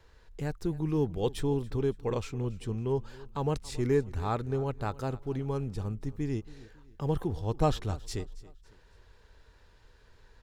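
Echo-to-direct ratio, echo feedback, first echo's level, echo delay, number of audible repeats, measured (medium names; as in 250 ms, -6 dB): -19.5 dB, 39%, -20.0 dB, 277 ms, 2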